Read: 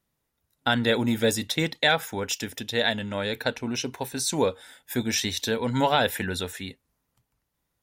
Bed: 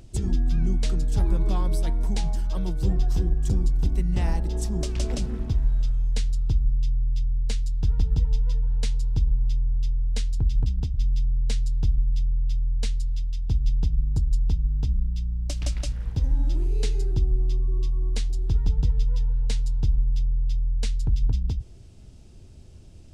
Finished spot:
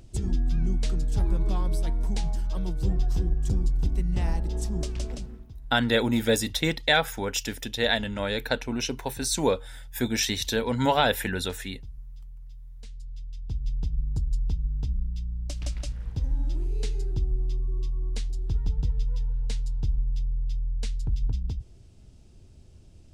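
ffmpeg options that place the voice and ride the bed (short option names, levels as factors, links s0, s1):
-filter_complex "[0:a]adelay=5050,volume=1[s0];[1:a]volume=4.47,afade=t=out:st=4.79:d=0.68:silence=0.133352,afade=t=in:st=12.77:d=1.29:silence=0.16788[s1];[s0][s1]amix=inputs=2:normalize=0"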